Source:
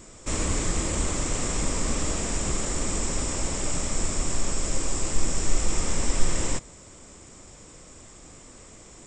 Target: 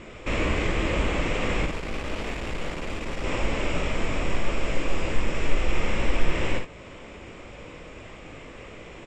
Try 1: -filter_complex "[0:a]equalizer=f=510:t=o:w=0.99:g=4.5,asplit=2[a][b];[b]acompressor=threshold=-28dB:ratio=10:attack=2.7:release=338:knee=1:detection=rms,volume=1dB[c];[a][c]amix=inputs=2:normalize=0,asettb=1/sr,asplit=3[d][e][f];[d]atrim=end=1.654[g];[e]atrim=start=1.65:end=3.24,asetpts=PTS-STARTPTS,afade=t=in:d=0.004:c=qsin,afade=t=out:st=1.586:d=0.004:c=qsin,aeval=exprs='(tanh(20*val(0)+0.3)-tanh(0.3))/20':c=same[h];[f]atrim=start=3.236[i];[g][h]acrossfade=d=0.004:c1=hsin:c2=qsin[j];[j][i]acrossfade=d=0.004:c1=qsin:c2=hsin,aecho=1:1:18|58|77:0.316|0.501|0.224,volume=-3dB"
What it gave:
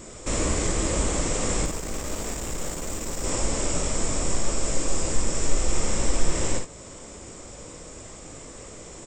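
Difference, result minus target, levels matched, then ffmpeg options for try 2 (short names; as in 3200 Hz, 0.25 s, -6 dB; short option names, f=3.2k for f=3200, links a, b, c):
2000 Hz band -7.5 dB
-filter_complex "[0:a]lowpass=f=2.6k:t=q:w=2.6,equalizer=f=510:t=o:w=0.99:g=4.5,asplit=2[a][b];[b]acompressor=threshold=-28dB:ratio=10:attack=2.7:release=338:knee=1:detection=rms,volume=1dB[c];[a][c]amix=inputs=2:normalize=0,asettb=1/sr,asplit=3[d][e][f];[d]atrim=end=1.654[g];[e]atrim=start=1.65:end=3.24,asetpts=PTS-STARTPTS,afade=t=in:d=0.004:c=qsin,afade=t=out:st=1.586:d=0.004:c=qsin,aeval=exprs='(tanh(20*val(0)+0.3)-tanh(0.3))/20':c=same[h];[f]atrim=start=3.236[i];[g][h]acrossfade=d=0.004:c1=hsin:c2=qsin[j];[j][i]acrossfade=d=0.004:c1=qsin:c2=hsin,aecho=1:1:18|58|77:0.316|0.501|0.224,volume=-3dB"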